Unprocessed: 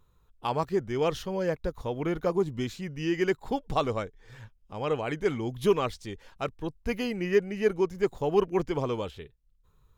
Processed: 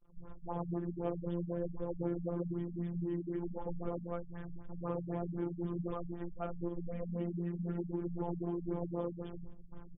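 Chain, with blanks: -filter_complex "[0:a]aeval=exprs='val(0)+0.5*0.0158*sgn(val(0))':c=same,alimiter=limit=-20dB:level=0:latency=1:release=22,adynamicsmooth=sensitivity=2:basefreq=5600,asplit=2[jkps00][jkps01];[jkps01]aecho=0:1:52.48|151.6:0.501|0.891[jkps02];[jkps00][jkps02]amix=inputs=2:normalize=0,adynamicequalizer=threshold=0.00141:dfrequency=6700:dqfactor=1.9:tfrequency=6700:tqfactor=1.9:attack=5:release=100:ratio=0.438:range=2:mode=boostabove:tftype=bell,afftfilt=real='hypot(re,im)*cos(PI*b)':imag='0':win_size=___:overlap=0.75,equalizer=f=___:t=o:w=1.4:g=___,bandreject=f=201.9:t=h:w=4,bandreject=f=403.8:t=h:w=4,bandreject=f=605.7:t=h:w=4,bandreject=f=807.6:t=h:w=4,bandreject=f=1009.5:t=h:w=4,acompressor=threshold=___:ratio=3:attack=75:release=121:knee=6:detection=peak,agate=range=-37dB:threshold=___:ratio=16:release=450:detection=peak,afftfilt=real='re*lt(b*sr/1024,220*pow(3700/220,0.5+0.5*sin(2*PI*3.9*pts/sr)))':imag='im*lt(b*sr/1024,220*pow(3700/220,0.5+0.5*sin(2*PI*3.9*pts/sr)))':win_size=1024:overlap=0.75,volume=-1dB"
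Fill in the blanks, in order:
1024, 2500, -13.5, -39dB, -41dB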